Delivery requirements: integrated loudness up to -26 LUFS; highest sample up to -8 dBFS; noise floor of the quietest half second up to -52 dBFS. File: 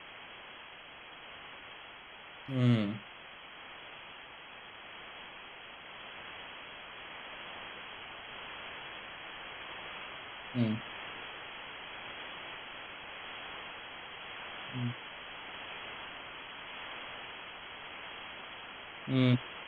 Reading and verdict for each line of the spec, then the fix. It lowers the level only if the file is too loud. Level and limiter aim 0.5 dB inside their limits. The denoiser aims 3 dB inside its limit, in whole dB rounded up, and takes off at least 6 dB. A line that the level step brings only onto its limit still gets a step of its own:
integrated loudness -40.0 LUFS: OK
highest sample -15.0 dBFS: OK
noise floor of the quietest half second -51 dBFS: fail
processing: denoiser 6 dB, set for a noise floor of -51 dBFS

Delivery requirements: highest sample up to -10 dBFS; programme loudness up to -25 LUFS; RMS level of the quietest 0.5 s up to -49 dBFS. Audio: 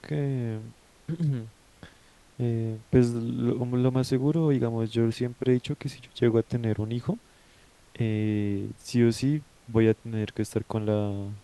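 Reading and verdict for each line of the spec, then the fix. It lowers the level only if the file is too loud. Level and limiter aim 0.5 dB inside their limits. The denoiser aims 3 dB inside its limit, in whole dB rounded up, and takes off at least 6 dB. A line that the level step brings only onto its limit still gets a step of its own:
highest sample -8.0 dBFS: fail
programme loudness -27.5 LUFS: OK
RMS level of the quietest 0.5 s -57 dBFS: OK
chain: limiter -10.5 dBFS

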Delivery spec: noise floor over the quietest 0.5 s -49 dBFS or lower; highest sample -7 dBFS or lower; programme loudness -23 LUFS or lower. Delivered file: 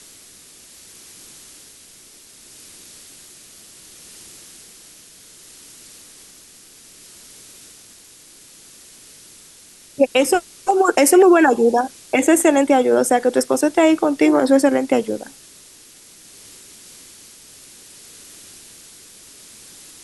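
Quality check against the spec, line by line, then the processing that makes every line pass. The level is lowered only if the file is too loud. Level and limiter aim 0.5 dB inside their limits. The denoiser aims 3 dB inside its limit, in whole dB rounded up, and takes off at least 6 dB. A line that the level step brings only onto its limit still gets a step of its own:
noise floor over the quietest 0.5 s -46 dBFS: fail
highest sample -4.0 dBFS: fail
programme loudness -16.0 LUFS: fail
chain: gain -7.5 dB

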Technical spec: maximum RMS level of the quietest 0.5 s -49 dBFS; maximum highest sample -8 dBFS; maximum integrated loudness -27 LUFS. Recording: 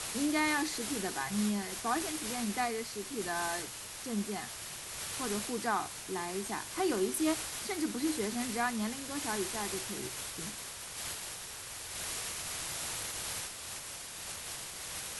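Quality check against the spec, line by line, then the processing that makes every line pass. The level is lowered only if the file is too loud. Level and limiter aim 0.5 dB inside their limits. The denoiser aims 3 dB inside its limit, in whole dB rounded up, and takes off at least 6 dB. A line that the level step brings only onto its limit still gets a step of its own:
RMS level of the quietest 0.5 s -44 dBFS: fail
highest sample -19.5 dBFS: OK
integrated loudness -35.0 LUFS: OK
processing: denoiser 8 dB, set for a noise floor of -44 dBFS

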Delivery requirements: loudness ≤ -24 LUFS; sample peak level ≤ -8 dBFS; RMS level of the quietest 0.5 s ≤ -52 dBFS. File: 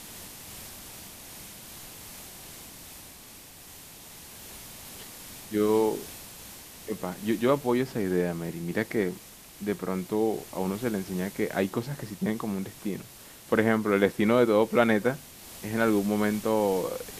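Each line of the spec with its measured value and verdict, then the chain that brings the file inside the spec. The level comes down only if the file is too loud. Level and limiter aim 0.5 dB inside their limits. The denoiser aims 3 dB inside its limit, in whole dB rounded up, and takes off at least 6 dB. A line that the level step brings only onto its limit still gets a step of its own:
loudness -27.5 LUFS: OK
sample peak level -6.5 dBFS: fail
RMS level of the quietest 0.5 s -48 dBFS: fail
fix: denoiser 7 dB, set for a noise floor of -48 dBFS; limiter -8.5 dBFS

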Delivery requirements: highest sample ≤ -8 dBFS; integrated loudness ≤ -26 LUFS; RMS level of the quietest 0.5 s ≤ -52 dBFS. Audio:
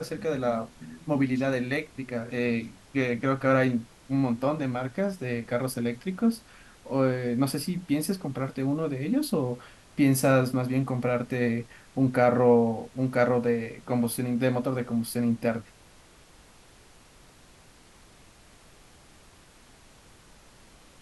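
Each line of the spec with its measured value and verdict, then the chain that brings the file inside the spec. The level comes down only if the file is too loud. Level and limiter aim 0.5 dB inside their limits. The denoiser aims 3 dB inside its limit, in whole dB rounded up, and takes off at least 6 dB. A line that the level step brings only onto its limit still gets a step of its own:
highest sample -9.5 dBFS: OK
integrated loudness -27.0 LUFS: OK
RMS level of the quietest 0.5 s -54 dBFS: OK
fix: none

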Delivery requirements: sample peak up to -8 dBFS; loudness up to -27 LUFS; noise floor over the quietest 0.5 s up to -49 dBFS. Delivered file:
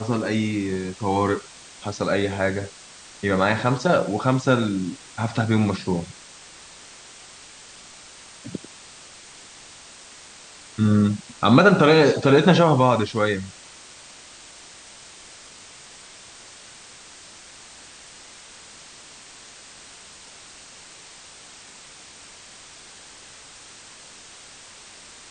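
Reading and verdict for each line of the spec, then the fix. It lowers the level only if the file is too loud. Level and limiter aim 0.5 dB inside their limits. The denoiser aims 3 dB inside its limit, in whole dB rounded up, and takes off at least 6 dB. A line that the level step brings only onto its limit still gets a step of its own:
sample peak -2.0 dBFS: fail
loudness -20.5 LUFS: fail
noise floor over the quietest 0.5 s -45 dBFS: fail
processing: gain -7 dB

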